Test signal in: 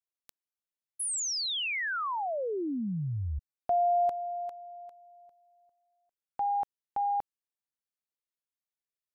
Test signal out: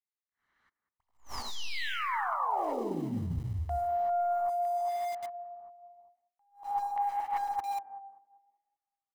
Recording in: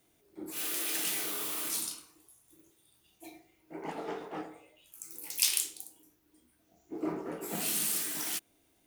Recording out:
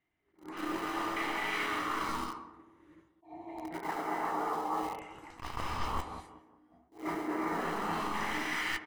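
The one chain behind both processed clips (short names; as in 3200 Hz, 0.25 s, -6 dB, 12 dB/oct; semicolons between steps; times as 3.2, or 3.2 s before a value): tracing distortion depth 0.061 ms; LFO low-pass saw down 0.86 Hz 840–2100 Hz; expander -58 dBFS, range -17 dB; dynamic EQ 170 Hz, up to -8 dB, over -48 dBFS, Q 0.74; tape echo 0.195 s, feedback 44%, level -12 dB, low-pass 1000 Hz; non-linear reverb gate 0.41 s rising, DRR -6.5 dB; in parallel at -8 dB: sample gate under -37.5 dBFS; on the sum: high shelf 3400 Hz +6 dB; comb 1 ms, depth 37%; reverse; compressor 5:1, threshold -35 dBFS; reverse; attack slew limiter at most 190 dB/s; gain +3.5 dB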